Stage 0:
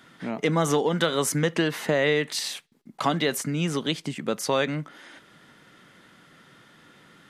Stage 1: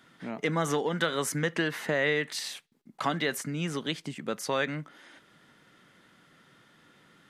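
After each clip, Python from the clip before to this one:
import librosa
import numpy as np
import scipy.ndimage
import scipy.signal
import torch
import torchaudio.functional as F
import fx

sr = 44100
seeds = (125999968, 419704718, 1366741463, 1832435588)

y = fx.dynamic_eq(x, sr, hz=1700.0, q=1.7, threshold_db=-41.0, ratio=4.0, max_db=6)
y = y * librosa.db_to_amplitude(-6.0)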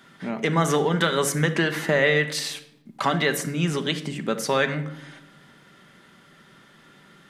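y = fx.room_shoebox(x, sr, seeds[0], volume_m3=2400.0, walls='furnished', distance_m=1.2)
y = y * librosa.db_to_amplitude(6.0)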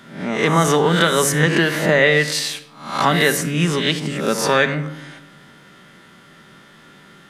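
y = fx.spec_swells(x, sr, rise_s=0.54)
y = y * librosa.db_to_amplitude(4.5)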